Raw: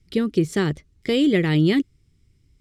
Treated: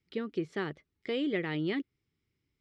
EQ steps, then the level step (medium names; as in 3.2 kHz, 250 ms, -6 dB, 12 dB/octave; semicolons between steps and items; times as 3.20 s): high-pass 830 Hz 6 dB/octave; dynamic bell 7.8 kHz, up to -7 dB, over -50 dBFS, Q 0.84; tape spacing loss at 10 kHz 23 dB; -3.5 dB